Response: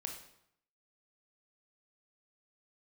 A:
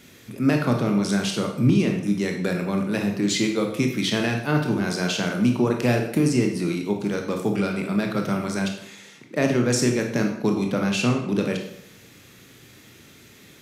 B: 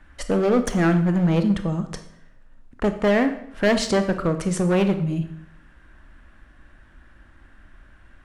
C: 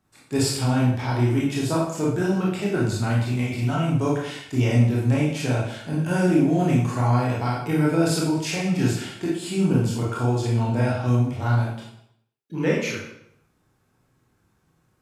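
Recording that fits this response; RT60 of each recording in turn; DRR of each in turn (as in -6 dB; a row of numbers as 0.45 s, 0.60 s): A; 0.75 s, 0.70 s, 0.75 s; 2.5 dB, 8.0 dB, -5.0 dB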